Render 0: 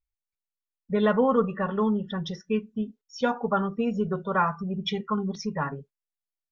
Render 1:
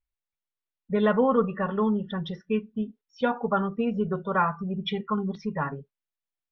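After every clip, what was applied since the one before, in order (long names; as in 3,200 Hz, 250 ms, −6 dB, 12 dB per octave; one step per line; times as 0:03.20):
low-pass filter 3,800 Hz 24 dB per octave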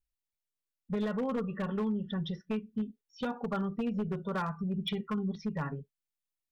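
parametric band 990 Hz −8.5 dB 2.8 octaves
downward compressor 6 to 1, threshold −28 dBFS, peak gain reduction 7 dB
wave folding −25.5 dBFS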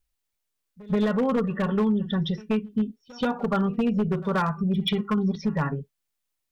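echo ahead of the sound 130 ms −21.5 dB
level +9 dB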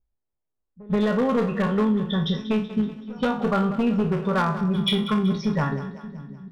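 peak hold with a decay on every bin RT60 0.36 s
low-pass that shuts in the quiet parts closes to 750 Hz, open at −23 dBFS
echo with a time of its own for lows and highs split 320 Hz, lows 581 ms, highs 189 ms, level −13.5 dB
level +1 dB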